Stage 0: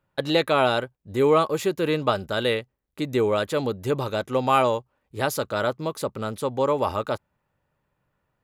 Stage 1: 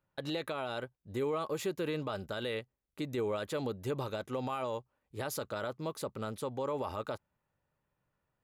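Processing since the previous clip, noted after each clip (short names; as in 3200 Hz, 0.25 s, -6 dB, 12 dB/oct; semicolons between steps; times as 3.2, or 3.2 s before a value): limiter -18.5 dBFS, peak gain reduction 12 dB; gain -8 dB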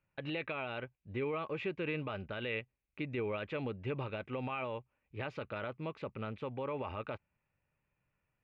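ladder low-pass 2700 Hz, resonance 70%; low shelf 230 Hz +6.5 dB; gain +6.5 dB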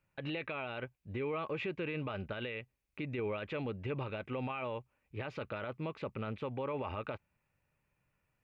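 limiter -32.5 dBFS, peak gain reduction 8.5 dB; gain +3 dB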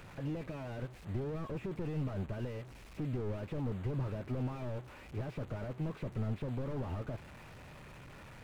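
delta modulation 64 kbps, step -49.5 dBFS; slew limiter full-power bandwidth 2.9 Hz; gain +5 dB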